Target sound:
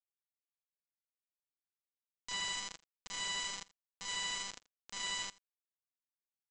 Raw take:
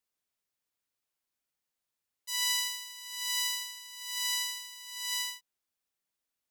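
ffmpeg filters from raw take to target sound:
-af "equalizer=f=5.6k:t=o:w=1.3:g=-12.5,aecho=1:1:2.8:0.4,acompressor=threshold=-40dB:ratio=6,aresample=16000,acrusher=bits=6:mix=0:aa=0.000001,aresample=44100,aecho=1:1:83:0.0841,volume=6.5dB"

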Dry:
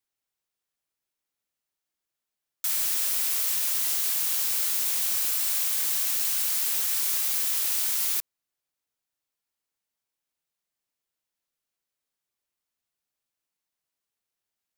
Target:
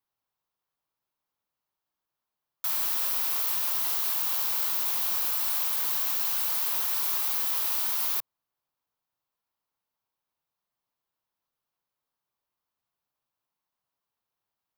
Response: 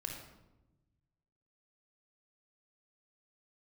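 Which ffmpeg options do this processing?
-af "equalizer=f=125:t=o:w=1:g=5,equalizer=f=1k:t=o:w=1:g=9,equalizer=f=2k:t=o:w=1:g=-4,equalizer=f=8k:t=o:w=1:g=-10"

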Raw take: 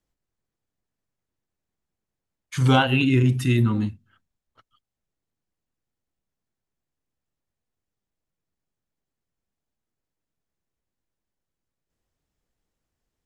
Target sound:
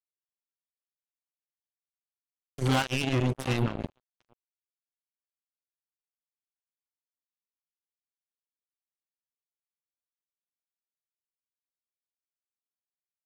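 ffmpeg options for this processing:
-filter_complex "[0:a]asplit=2[a][b];[b]adelay=699,lowpass=f=1.1k:p=1,volume=-9dB,asplit=2[c][d];[d]adelay=699,lowpass=f=1.1k:p=1,volume=0.27,asplit=2[e][f];[f]adelay=699,lowpass=f=1.1k:p=1,volume=0.27[g];[a][c][e][g]amix=inputs=4:normalize=0,acrusher=bits=2:mix=0:aa=0.5,volume=-8.5dB"

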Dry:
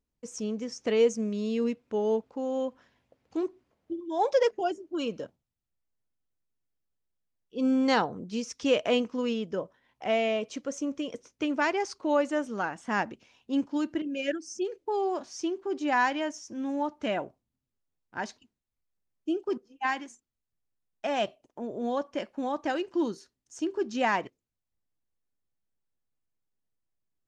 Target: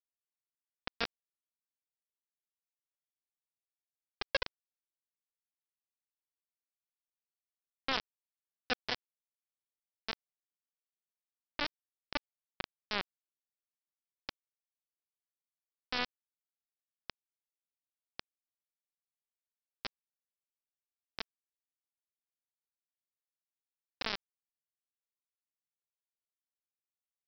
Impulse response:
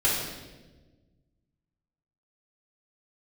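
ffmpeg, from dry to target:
-af "acompressor=threshold=-33dB:ratio=2,aresample=11025,acrusher=bits=3:mix=0:aa=0.000001,aresample=44100,volume=-1.5dB"

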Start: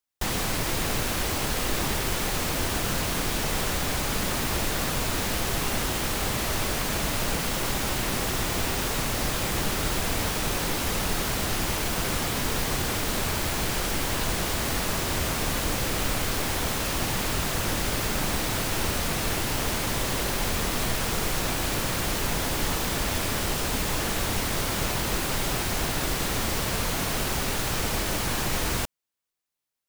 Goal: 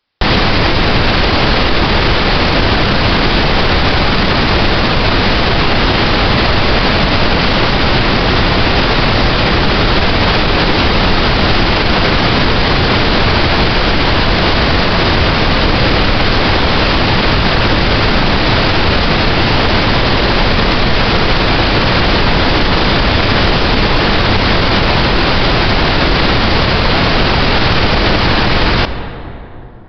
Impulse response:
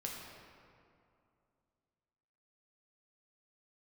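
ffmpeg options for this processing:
-filter_complex "[0:a]asplit=2[a][b];[1:a]atrim=start_sample=2205,asetrate=32634,aresample=44100[c];[b][c]afir=irnorm=-1:irlink=0,volume=-12dB[d];[a][d]amix=inputs=2:normalize=0,aresample=11025,aresample=44100,alimiter=level_in=21dB:limit=-1dB:release=50:level=0:latency=1,volume=-1dB"

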